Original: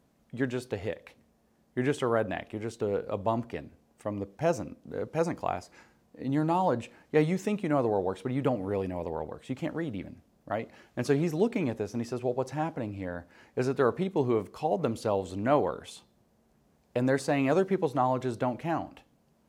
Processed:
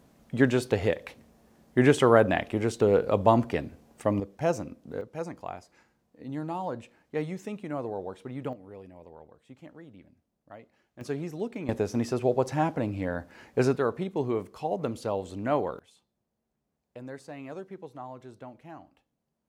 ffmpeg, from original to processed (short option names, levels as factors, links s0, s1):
-af "asetnsamples=n=441:p=0,asendcmd='4.2 volume volume 0.5dB;5.01 volume volume -7dB;8.53 volume volume -15dB;11.01 volume volume -7dB;11.69 volume volume 5dB;13.76 volume volume -2dB;15.79 volume volume -15dB',volume=2.51"